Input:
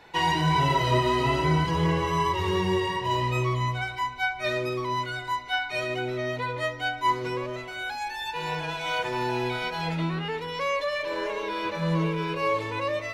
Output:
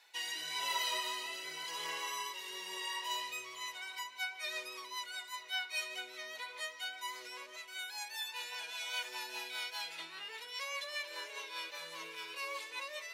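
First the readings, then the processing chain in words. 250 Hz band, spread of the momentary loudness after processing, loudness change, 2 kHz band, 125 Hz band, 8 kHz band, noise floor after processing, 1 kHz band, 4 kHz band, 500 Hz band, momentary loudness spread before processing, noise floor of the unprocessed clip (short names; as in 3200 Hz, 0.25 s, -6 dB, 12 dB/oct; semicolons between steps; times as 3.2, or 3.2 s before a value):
under -30 dB, 7 LU, -12.5 dB, -10.0 dB, under -40 dB, +0.5 dB, -51 dBFS, -17.5 dB, -5.0 dB, -23.0 dB, 8 LU, -37 dBFS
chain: HPF 390 Hz 12 dB/oct; differentiator; rotary speaker horn 0.9 Hz, later 5 Hz, at 3.21; on a send: darkening echo 0.892 s, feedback 81%, low-pass 2800 Hz, level -18 dB; on the sum: gain +4 dB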